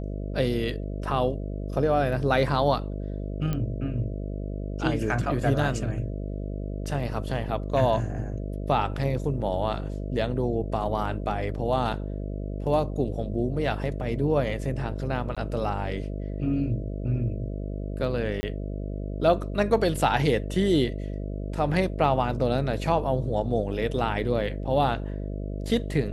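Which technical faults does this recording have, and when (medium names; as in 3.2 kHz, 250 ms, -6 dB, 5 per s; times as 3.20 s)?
buzz 50 Hz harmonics 13 -32 dBFS
3.53 s: pop -16 dBFS
15.35–15.37 s: dropout 16 ms
18.41–18.43 s: dropout 20 ms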